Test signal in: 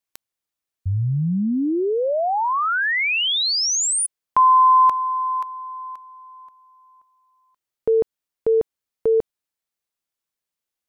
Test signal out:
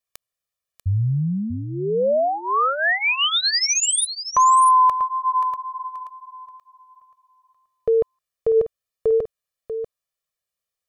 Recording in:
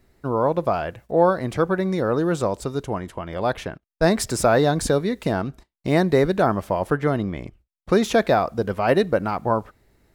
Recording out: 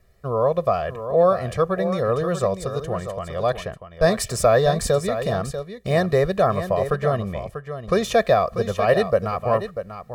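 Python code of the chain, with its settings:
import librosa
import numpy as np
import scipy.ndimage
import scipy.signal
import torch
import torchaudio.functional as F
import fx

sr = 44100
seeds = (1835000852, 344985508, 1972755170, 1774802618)

y = x + 0.85 * np.pad(x, (int(1.7 * sr / 1000.0), 0))[:len(x)]
y = fx.wow_flutter(y, sr, seeds[0], rate_hz=2.1, depth_cents=19.0)
y = y + 10.0 ** (-10.0 / 20.0) * np.pad(y, (int(641 * sr / 1000.0), 0))[:len(y)]
y = y * librosa.db_to_amplitude(-2.5)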